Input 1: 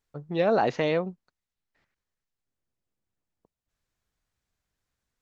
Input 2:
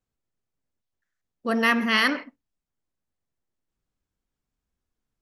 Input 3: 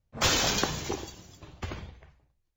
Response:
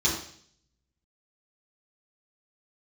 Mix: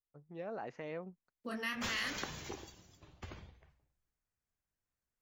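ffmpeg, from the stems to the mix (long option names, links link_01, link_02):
-filter_complex "[0:a]equalizer=frequency=3800:width=2.1:gain=-10,volume=-9.5dB,afade=type=in:start_time=0.83:duration=0.53:silence=0.354813[link_01];[1:a]acrossover=split=180|3000[link_02][link_03][link_04];[link_03]acompressor=threshold=-29dB:ratio=6[link_05];[link_02][link_05][link_04]amix=inputs=3:normalize=0,flanger=delay=19.5:depth=5.7:speed=2.1,acrusher=bits=11:mix=0:aa=0.000001,volume=-6.5dB,asplit=2[link_06][link_07];[2:a]adelay=1600,volume=-11.5dB[link_08];[link_07]apad=whole_len=183621[link_09];[link_08][link_09]sidechaincompress=threshold=-36dB:ratio=8:attack=7.6:release=336[link_10];[link_01][link_06][link_10]amix=inputs=3:normalize=0,adynamicequalizer=threshold=0.00355:dfrequency=1900:dqfactor=0.98:tfrequency=1900:tqfactor=0.98:attack=5:release=100:ratio=0.375:range=2.5:mode=boostabove:tftype=bell,acompressor=threshold=-41dB:ratio=1.5"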